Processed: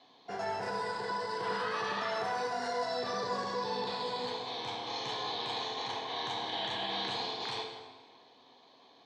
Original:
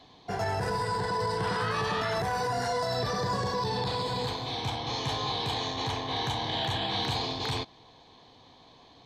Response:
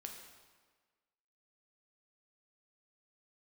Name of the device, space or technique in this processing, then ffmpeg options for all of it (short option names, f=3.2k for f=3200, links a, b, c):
supermarket ceiling speaker: -filter_complex "[0:a]highpass=280,lowpass=6.4k[a];[1:a]atrim=start_sample=2205[b];[a][b]afir=irnorm=-1:irlink=0"